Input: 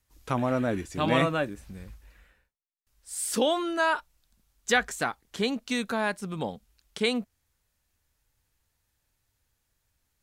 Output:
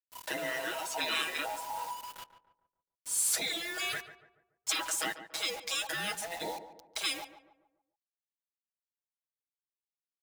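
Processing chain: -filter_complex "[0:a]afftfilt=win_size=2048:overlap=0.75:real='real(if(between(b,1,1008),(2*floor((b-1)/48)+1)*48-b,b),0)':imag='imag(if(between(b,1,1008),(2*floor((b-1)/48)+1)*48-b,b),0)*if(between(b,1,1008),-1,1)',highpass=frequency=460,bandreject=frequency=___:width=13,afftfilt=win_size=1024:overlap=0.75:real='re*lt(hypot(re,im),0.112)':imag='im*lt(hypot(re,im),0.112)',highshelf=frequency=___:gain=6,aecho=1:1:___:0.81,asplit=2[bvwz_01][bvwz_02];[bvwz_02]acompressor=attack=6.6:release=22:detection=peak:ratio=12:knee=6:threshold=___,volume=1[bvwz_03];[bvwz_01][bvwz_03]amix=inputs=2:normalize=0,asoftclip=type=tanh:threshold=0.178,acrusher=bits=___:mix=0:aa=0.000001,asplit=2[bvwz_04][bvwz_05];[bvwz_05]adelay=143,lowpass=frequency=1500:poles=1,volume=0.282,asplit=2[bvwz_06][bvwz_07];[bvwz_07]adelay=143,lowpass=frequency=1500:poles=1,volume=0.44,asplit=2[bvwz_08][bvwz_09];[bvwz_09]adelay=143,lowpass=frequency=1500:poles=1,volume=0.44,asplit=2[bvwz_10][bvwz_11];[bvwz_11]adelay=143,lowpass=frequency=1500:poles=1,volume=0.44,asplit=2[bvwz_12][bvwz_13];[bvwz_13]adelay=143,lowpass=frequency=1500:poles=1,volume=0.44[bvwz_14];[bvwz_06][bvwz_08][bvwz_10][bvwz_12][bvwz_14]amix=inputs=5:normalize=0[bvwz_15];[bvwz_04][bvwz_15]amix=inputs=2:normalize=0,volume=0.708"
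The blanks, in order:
1200, 5600, 6.2, 0.00708, 6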